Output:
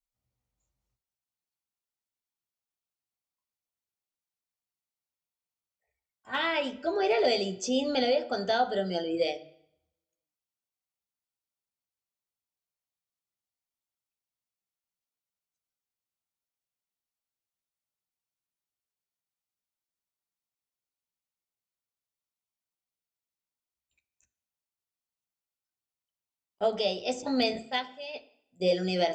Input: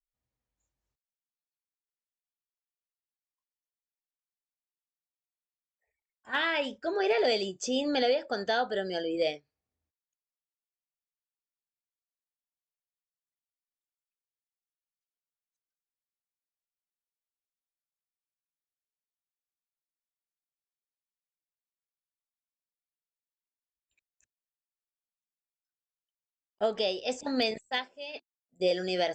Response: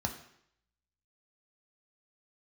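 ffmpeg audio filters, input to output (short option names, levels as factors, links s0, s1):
-filter_complex "[0:a]bandreject=f=1700:w=6.6,asplit=2[s0][s1];[1:a]atrim=start_sample=2205,adelay=12[s2];[s1][s2]afir=irnorm=-1:irlink=0,volume=0.335[s3];[s0][s3]amix=inputs=2:normalize=0"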